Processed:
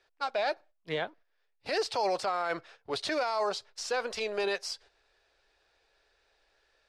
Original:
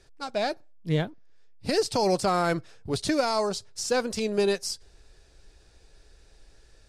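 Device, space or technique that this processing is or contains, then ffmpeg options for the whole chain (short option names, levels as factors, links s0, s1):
DJ mixer with the lows and highs turned down: -filter_complex "[0:a]acrossover=split=490 4200:gain=0.0794 1 0.141[s0][s1][s2];[s0][s1][s2]amix=inputs=3:normalize=0,alimiter=level_in=1.19:limit=0.0631:level=0:latency=1:release=23,volume=0.841,agate=range=0.398:threshold=0.00141:ratio=16:detection=peak,asettb=1/sr,asplit=3[s3][s4][s5];[s3]atrim=end=3.584[s6];[s4]atrim=start=3.58:end=4.44,asetpts=PTS-STARTPTS,afade=t=in:d=0.004:c=qsin,afade=t=out:st=0.856:d=0.004:c=qsin,asubboost=boost=10.5:cutoff=77[s7];[s5]atrim=start=4.436[s8];[s6][s7]acrossfade=d=0.004:c1=hsin:c2=qsin[s9];[s9][s8]acrossfade=d=0.004:c1=qsin:c2=hsin,volume=1.58"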